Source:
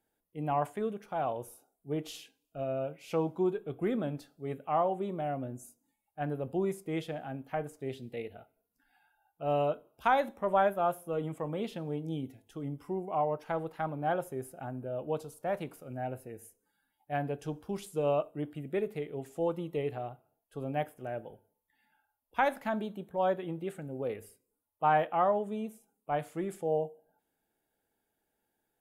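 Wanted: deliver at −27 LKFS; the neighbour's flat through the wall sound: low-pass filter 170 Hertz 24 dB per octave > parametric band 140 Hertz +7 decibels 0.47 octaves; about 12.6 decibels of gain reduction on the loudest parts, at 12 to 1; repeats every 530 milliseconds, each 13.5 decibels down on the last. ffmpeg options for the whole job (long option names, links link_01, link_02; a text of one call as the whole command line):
ffmpeg -i in.wav -af "acompressor=threshold=-34dB:ratio=12,lowpass=frequency=170:width=0.5412,lowpass=frequency=170:width=1.3066,equalizer=frequency=140:width_type=o:width=0.47:gain=7,aecho=1:1:530|1060:0.211|0.0444,volume=18.5dB" out.wav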